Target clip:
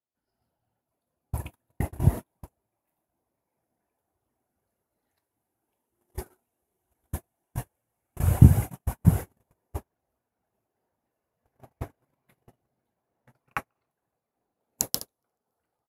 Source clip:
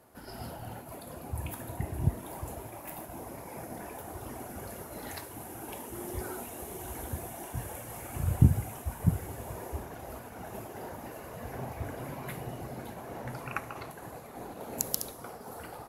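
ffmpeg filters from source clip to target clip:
-filter_complex "[0:a]asplit=5[s0][s1][s2][s3][s4];[s1]adelay=282,afreqshift=54,volume=0.0891[s5];[s2]adelay=564,afreqshift=108,volume=0.0501[s6];[s3]adelay=846,afreqshift=162,volume=0.0279[s7];[s4]adelay=1128,afreqshift=216,volume=0.0157[s8];[s0][s5][s6][s7][s8]amix=inputs=5:normalize=0,agate=range=0.00501:threshold=0.0224:ratio=16:detection=peak,volume=2.24"

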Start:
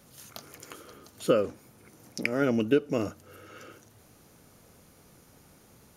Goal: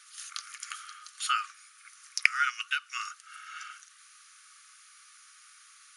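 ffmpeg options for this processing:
-af "afftfilt=real='re*between(b*sr/4096,1100,11000)':imag='im*between(b*sr/4096,1100,11000)':win_size=4096:overlap=0.75,volume=2.37"

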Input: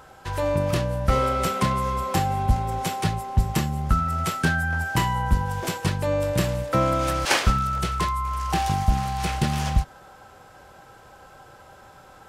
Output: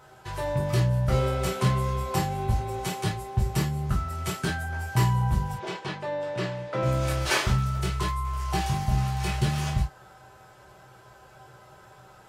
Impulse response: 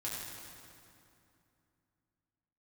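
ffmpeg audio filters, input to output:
-filter_complex "[0:a]asettb=1/sr,asplit=3[s0][s1][s2];[s0]atrim=end=5.544[s3];[s1]atrim=start=5.54:end=6.83,asetpts=PTS-STARTPTS,afade=t=in:d=0.004:c=qsin,afade=t=out:st=1.286:d=0.004:c=qsin,highpass=260,lowpass=3800[s4];[s2]atrim=start=6.826[s5];[s3][s4]acrossfade=d=0.004:c1=hsin:c2=qsin[s6];[s6][s5]acrossfade=d=0.004:c1=qsin:c2=hsin[s7];[1:a]atrim=start_sample=2205,atrim=end_sample=3087,asetrate=52920,aresample=44100[s8];[s7][s8]afir=irnorm=-1:irlink=0"

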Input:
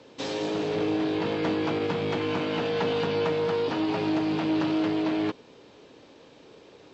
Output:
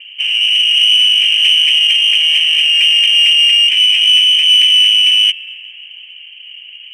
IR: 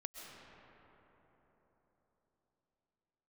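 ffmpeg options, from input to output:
-filter_complex "[0:a]lowpass=f=2800:t=q:w=0.5098,lowpass=f=2800:t=q:w=0.6013,lowpass=f=2800:t=q:w=0.9,lowpass=f=2800:t=q:w=2.563,afreqshift=-3300,asplit=2[s0][s1];[1:a]atrim=start_sample=2205[s2];[s1][s2]afir=irnorm=-1:irlink=0,volume=0.299[s3];[s0][s3]amix=inputs=2:normalize=0,aexciter=amount=14.4:drive=8.6:freq=2100,volume=0.316"

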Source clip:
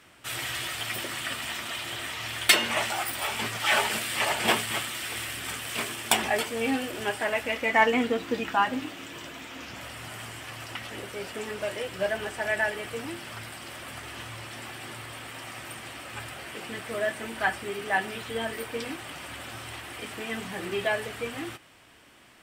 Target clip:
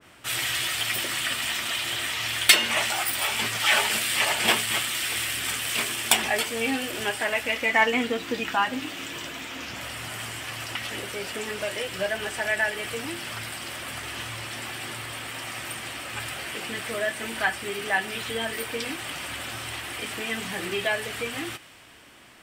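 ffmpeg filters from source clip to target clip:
-filter_complex "[0:a]asplit=2[s0][s1];[s1]acompressor=threshold=0.0158:ratio=6,volume=1.12[s2];[s0][s2]amix=inputs=2:normalize=0,adynamicequalizer=threshold=0.0126:dfrequency=1600:dqfactor=0.7:tfrequency=1600:tqfactor=0.7:attack=5:release=100:ratio=0.375:range=3:mode=boostabove:tftype=highshelf,volume=0.708"

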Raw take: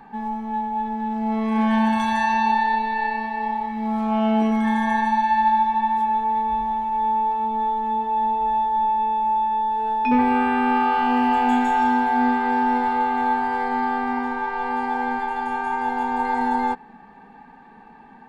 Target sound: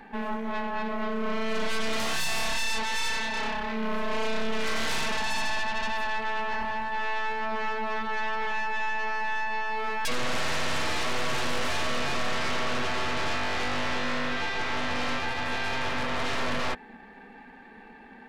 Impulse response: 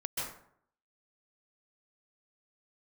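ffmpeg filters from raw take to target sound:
-af "equalizer=f=125:t=o:w=1:g=-11,equalizer=f=500:t=o:w=1:g=3,equalizer=f=1000:t=o:w=1:g=-11,equalizer=f=2000:t=o:w=1:g=7,aeval=exprs='0.282*(cos(1*acos(clip(val(0)/0.282,-1,1)))-cos(1*PI/2))+0.126*(cos(2*acos(clip(val(0)/0.282,-1,1)))-cos(2*PI/2))+0.126*(cos(6*acos(clip(val(0)/0.282,-1,1)))-cos(6*PI/2))':c=same,asoftclip=type=tanh:threshold=0.0631,volume=1.19"

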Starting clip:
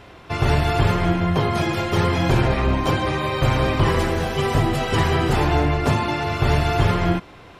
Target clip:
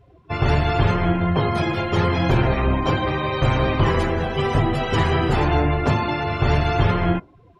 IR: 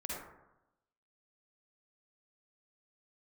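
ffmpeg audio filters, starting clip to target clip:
-af "afftdn=nr=23:nf=-35"

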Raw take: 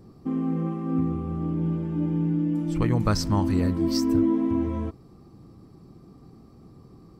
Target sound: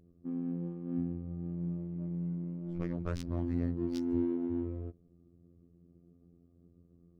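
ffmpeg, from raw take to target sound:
-af "afftfilt=real='hypot(re,im)*cos(PI*b)':imag='0':win_size=2048:overlap=0.75,superequalizer=9b=0.316:10b=0.631,adynamicsmooth=sensitivity=2.5:basefreq=600,volume=0.376"

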